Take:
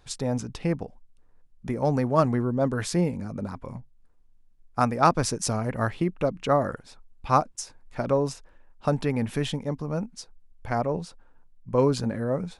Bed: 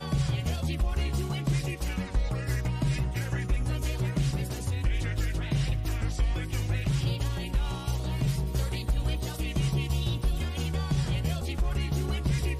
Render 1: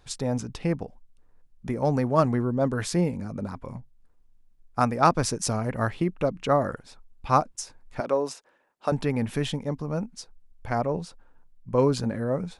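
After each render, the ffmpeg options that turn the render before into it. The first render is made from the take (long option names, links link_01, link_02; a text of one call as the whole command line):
ffmpeg -i in.wav -filter_complex "[0:a]asettb=1/sr,asplit=3[link_01][link_02][link_03];[link_01]atrim=end=8.004[link_04];[link_02]atrim=start=8:end=8.92,asetpts=PTS-STARTPTS,afade=type=in:duration=0.004:curve=qsin,afade=type=out:start_time=0.916:duration=0.004:curve=qsin,highpass=330[link_05];[link_03]atrim=start=8.916[link_06];[link_04][link_05]acrossfade=duration=0.004:curve1=hsin:curve2=qsin[link_07];[link_07][link_06]acrossfade=duration=0.004:curve1=qsin:curve2=hsin" out.wav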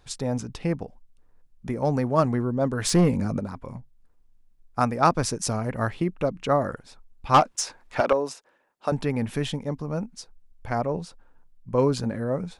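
ffmpeg -i in.wav -filter_complex "[0:a]asplit=3[link_01][link_02][link_03];[link_01]afade=type=out:start_time=2.84:duration=0.02[link_04];[link_02]aeval=exprs='0.237*sin(PI/2*1.58*val(0)/0.237)':channel_layout=same,afade=type=in:start_time=2.84:duration=0.02,afade=type=out:start_time=3.38:duration=0.02[link_05];[link_03]afade=type=in:start_time=3.38:duration=0.02[link_06];[link_04][link_05][link_06]amix=inputs=3:normalize=0,asettb=1/sr,asplit=3[link_07][link_08][link_09];[link_07]atrim=end=7.344[link_10];[link_08]atrim=start=7.34:end=8.13,asetpts=PTS-STARTPTS,afade=type=in:duration=0.004:curve=qsin,afade=type=out:start_time=0.786:duration=0.004:curve=qsin,asplit=2[link_11][link_12];[link_12]highpass=frequency=720:poles=1,volume=19dB,asoftclip=type=tanh:threshold=-6.5dB[link_13];[link_11][link_13]amix=inputs=2:normalize=0,lowpass=frequency=3900:poles=1,volume=-6dB[link_14];[link_09]atrim=start=8.126[link_15];[link_10][link_14]acrossfade=duration=0.004:curve1=hsin:curve2=qsin[link_16];[link_16][link_15]acrossfade=duration=0.004:curve1=qsin:curve2=hsin" out.wav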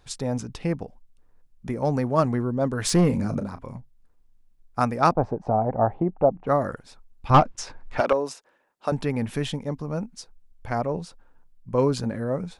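ffmpeg -i in.wav -filter_complex "[0:a]asettb=1/sr,asplit=3[link_01][link_02][link_03];[link_01]atrim=end=3.064[link_04];[link_02]atrim=start=3.06:end=3.71,asetpts=PTS-STARTPTS,afade=type=in:duration=0.004:curve=qsin,afade=type=out:start_time=0.646:duration=0.004:curve=qsin,asplit=2[link_05][link_06];[link_06]adelay=35,volume=-11dB[link_07];[link_05][link_07]amix=inputs=2:normalize=0,atrim=end_sample=28665[link_08];[link_03]atrim=start=3.706[link_09];[link_04][link_08]acrossfade=duration=0.004:curve1=hsin:curve2=qsin[link_10];[link_10][link_09]acrossfade=duration=0.004:curve1=qsin:curve2=hsin,asettb=1/sr,asplit=3[link_11][link_12][link_13];[link_11]atrim=end=5.124[link_14];[link_12]atrim=start=5.12:end=6.47,asetpts=PTS-STARTPTS,afade=type=in:duration=0.004:curve=qsin,afade=type=out:start_time=1.346:duration=0.004:curve=qsin,lowpass=frequency=770:width_type=q:width=5.3[link_15];[link_13]atrim=start=6.466[link_16];[link_14][link_15]acrossfade=duration=0.004:curve1=hsin:curve2=qsin[link_17];[link_17][link_16]acrossfade=duration=0.004:curve1=qsin:curve2=hsin,asettb=1/sr,asplit=3[link_18][link_19][link_20];[link_18]atrim=end=7.304[link_21];[link_19]atrim=start=7.3:end=7.98,asetpts=PTS-STARTPTS,afade=type=in:duration=0.004:curve=qsin,afade=type=out:start_time=0.676:duration=0.004:curve=qsin,aemphasis=mode=reproduction:type=bsi[link_22];[link_20]atrim=start=7.976[link_23];[link_21][link_22]acrossfade=duration=0.004:curve1=hsin:curve2=qsin[link_24];[link_24][link_23]acrossfade=duration=0.004:curve1=qsin:curve2=hsin" out.wav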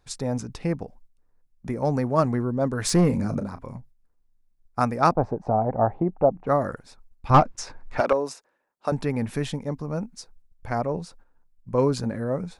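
ffmpeg -i in.wav -af "equalizer=frequency=3100:width_type=o:width=0.42:gain=-5.5,agate=range=-7dB:threshold=-49dB:ratio=16:detection=peak" out.wav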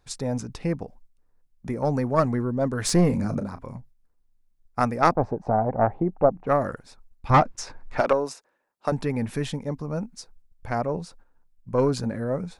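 ffmpeg -i in.wav -af "aeval=exprs='0.75*(cos(1*acos(clip(val(0)/0.75,-1,1)))-cos(1*PI/2))+0.237*(cos(2*acos(clip(val(0)/0.75,-1,1)))-cos(2*PI/2))':channel_layout=same" out.wav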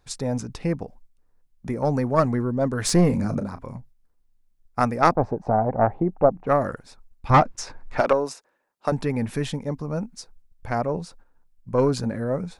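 ffmpeg -i in.wav -af "volume=1.5dB" out.wav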